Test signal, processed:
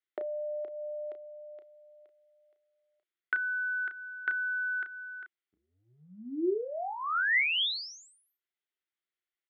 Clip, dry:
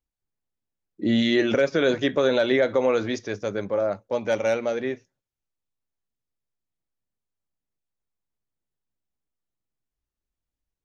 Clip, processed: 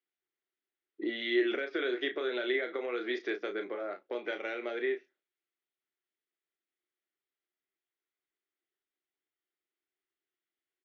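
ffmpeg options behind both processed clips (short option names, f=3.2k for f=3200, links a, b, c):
-filter_complex "[0:a]acompressor=threshold=-29dB:ratio=6,highpass=f=330:w=0.5412,highpass=f=330:w=1.3066,equalizer=f=360:t=q:w=4:g=9,equalizer=f=540:t=q:w=4:g=-8,equalizer=f=940:t=q:w=4:g=-8,equalizer=f=1.4k:t=q:w=4:g=4,equalizer=f=2k:t=q:w=4:g=8,equalizer=f=3.3k:t=q:w=4:g=5,lowpass=f=3.9k:w=0.5412,lowpass=f=3.9k:w=1.3066,asplit=2[a][b];[b]adelay=33,volume=-8dB[c];[a][c]amix=inputs=2:normalize=0,volume=-2dB"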